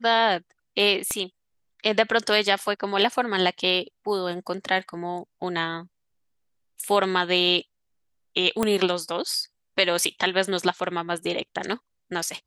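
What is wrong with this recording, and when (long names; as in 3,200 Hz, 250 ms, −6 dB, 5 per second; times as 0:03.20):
0:01.11: click −13 dBFS
0:08.63: click −9 dBFS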